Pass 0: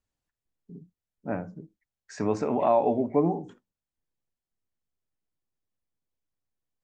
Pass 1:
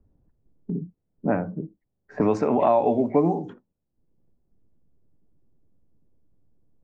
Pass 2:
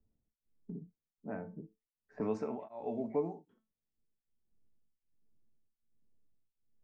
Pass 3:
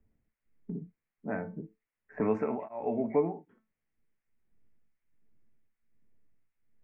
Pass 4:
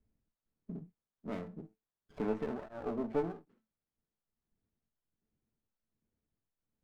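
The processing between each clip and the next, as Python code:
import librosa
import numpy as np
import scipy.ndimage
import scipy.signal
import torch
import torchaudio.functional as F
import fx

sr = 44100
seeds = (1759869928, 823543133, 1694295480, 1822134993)

y1 = fx.env_lowpass(x, sr, base_hz=350.0, full_db=-21.0)
y1 = fx.band_squash(y1, sr, depth_pct=70)
y1 = y1 * librosa.db_to_amplitude(5.0)
y2 = fx.comb_fb(y1, sr, f0_hz=220.0, decay_s=0.25, harmonics='all', damping=0.0, mix_pct=70)
y2 = y2 * np.abs(np.cos(np.pi * 1.3 * np.arange(len(y2)) / sr))
y2 = y2 * librosa.db_to_amplitude(-6.5)
y3 = fx.high_shelf_res(y2, sr, hz=3000.0, db=-12.5, q=3.0)
y3 = y3 * librosa.db_to_amplitude(6.0)
y4 = fx.running_max(y3, sr, window=17)
y4 = y4 * librosa.db_to_amplitude(-5.5)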